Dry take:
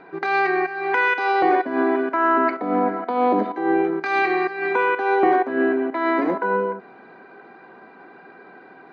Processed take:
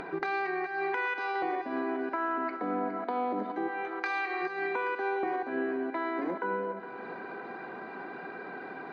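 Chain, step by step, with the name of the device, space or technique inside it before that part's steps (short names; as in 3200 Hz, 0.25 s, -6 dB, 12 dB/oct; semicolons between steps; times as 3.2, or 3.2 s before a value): 3.67–4.41 HPF 1100 Hz -> 550 Hz 12 dB/oct; upward and downward compression (upward compressor, threshold -35 dBFS; compressor 6:1, threshold -30 dBFS, peak gain reduction 16 dB); split-band echo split 380 Hz, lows 0.196 s, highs 0.413 s, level -13 dB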